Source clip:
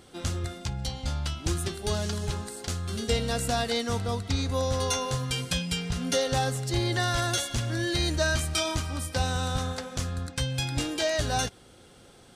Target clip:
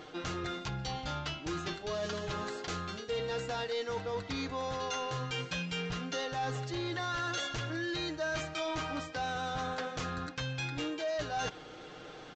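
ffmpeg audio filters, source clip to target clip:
ffmpeg -i in.wav -af "bass=frequency=250:gain=-10,treble=frequency=4000:gain=-11,aecho=1:1:6.5:0.61,areverse,acompressor=threshold=-41dB:ratio=4,areverse,asoftclip=type=tanh:threshold=-35dB,aresample=16000,aresample=44100,volume=7.5dB" out.wav

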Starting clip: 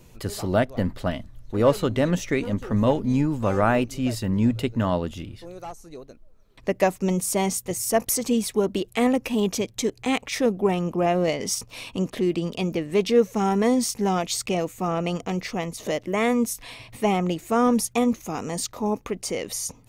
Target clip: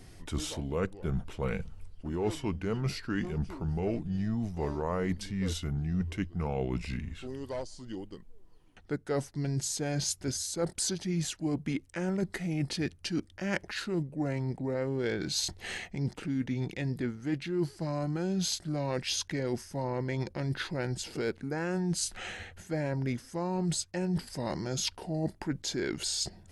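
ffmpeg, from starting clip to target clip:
ffmpeg -i in.wav -af "areverse,acompressor=threshold=-29dB:ratio=6,areverse,asetrate=33075,aresample=44100" out.wav

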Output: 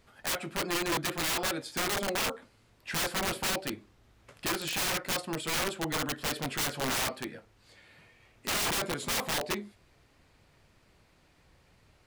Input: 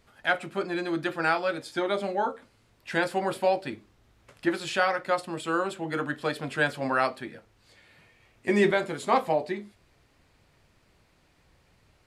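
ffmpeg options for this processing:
ffmpeg -i in.wav -af "aeval=exprs='(mod(17.8*val(0)+1,2)-1)/17.8':channel_layout=same" out.wav

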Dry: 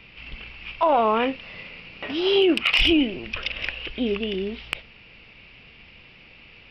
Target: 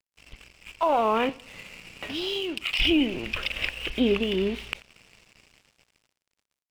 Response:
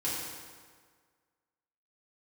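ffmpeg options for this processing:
-filter_complex "[0:a]dynaudnorm=framelen=340:gausssize=9:maxgain=13dB,alimiter=limit=-8.5dB:level=0:latency=1:release=210,asettb=1/sr,asplit=3[link_01][link_02][link_03];[link_01]atrim=end=1.294[link_04];[link_02]atrim=start=1.29:end=2.8,asetpts=PTS-STARTPTS,afade=type=in:duration=0.004:curve=qsin,afade=type=out:start_time=1.506:duration=0.004:curve=qsin,acrossover=split=150|3000[link_05][link_06][link_07];[link_06]acompressor=threshold=-35dB:ratio=2[link_08];[link_05][link_08][link_07]amix=inputs=3:normalize=0[link_09];[link_03]atrim=start=2.796[link_10];[link_04][link_09]acrossfade=duration=0.004:curve1=hsin:curve2=qsin[link_11];[link_11][link_10]acrossfade=duration=0.004:curve1=qsin:curve2=hsin,aeval=exprs='sgn(val(0))*max(abs(val(0))-0.01,0)':channel_layout=same,aecho=1:1:88|176|264:0.0708|0.0304|0.0131,volume=-4.5dB"

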